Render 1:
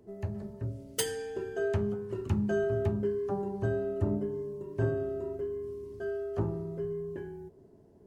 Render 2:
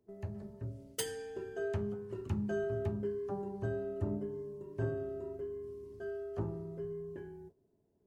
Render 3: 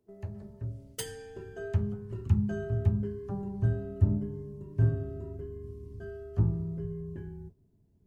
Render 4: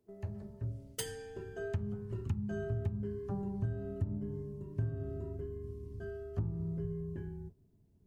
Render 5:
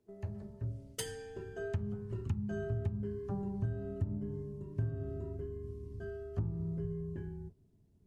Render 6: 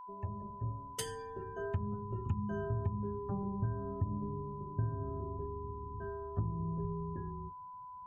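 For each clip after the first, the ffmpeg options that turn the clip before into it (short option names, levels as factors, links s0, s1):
-af "agate=range=0.282:threshold=0.00398:ratio=16:detection=peak,volume=0.501"
-af "asubboost=boost=7.5:cutoff=170"
-af "acompressor=threshold=0.0316:ratio=8,volume=0.891"
-af "lowpass=12000"
-af "afftdn=nr=20:nf=-56,aeval=exprs='val(0)+0.00501*sin(2*PI*1000*n/s)':c=same"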